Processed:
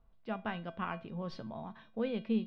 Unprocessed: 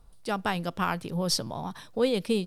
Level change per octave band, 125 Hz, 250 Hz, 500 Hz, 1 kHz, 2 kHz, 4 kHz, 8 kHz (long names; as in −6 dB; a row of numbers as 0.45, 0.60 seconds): −9.5 dB, −5.5 dB, −10.5 dB, −10.0 dB, −9.5 dB, −18.5 dB, below −35 dB